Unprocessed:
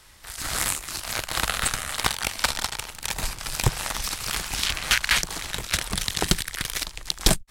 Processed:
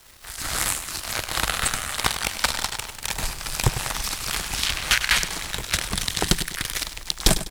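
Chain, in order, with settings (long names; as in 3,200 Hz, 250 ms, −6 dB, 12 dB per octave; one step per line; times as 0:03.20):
bit-depth reduction 8 bits, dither none
repeating echo 100 ms, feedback 39%, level −12 dB
level +1 dB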